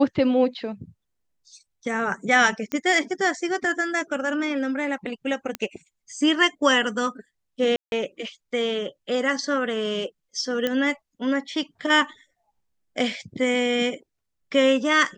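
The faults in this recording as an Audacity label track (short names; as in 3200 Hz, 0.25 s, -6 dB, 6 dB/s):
2.720000	2.720000	pop -14 dBFS
5.550000	5.550000	pop -12 dBFS
7.760000	7.920000	gap 0.161 s
10.670000	10.670000	pop -11 dBFS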